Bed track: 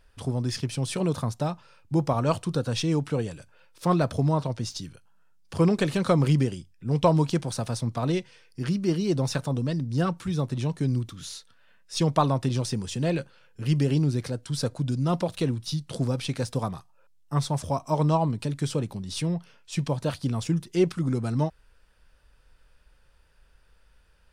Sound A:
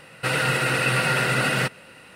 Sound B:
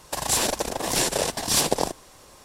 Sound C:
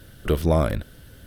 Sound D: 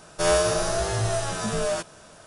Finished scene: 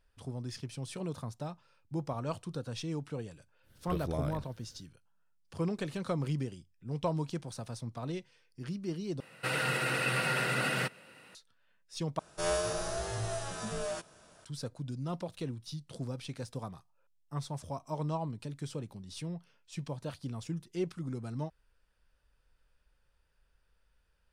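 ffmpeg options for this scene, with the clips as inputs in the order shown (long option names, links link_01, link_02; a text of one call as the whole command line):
ffmpeg -i bed.wav -i cue0.wav -i cue1.wav -i cue2.wav -i cue3.wav -filter_complex "[0:a]volume=-12dB[link_01];[1:a]highpass=100[link_02];[link_01]asplit=3[link_03][link_04][link_05];[link_03]atrim=end=9.204[link_06];[link_02]atrim=end=2.15,asetpts=PTS-STARTPTS,volume=-9dB[link_07];[link_04]atrim=start=11.346:end=12.194[link_08];[4:a]atrim=end=2.26,asetpts=PTS-STARTPTS,volume=-10.5dB[link_09];[link_05]atrim=start=14.446[link_10];[3:a]atrim=end=1.26,asetpts=PTS-STARTPTS,volume=-16dB,afade=type=in:duration=0.1,afade=type=out:start_time=1.16:duration=0.1,adelay=3620[link_11];[link_06][link_07]acrossfade=duration=0.004:curve1=hsin:curve2=hsin[link_12];[link_12][link_08]acrossfade=duration=0.004:curve1=hsin:curve2=hsin[link_13];[link_13][link_09]acrossfade=duration=0.004:curve1=hsin:curve2=hsin[link_14];[link_14][link_10]acrossfade=duration=0.004:curve1=hsin:curve2=hsin[link_15];[link_15][link_11]amix=inputs=2:normalize=0" out.wav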